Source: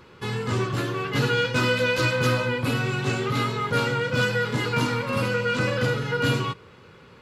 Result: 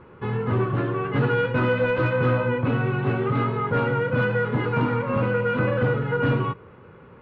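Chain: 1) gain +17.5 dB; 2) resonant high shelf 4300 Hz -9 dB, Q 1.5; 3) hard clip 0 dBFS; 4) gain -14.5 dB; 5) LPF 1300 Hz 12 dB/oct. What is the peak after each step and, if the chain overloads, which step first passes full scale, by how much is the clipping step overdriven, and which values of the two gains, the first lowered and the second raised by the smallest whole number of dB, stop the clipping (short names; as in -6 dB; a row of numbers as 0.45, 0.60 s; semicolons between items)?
+6.5, +7.0, 0.0, -14.5, -14.0 dBFS; step 1, 7.0 dB; step 1 +10.5 dB, step 4 -7.5 dB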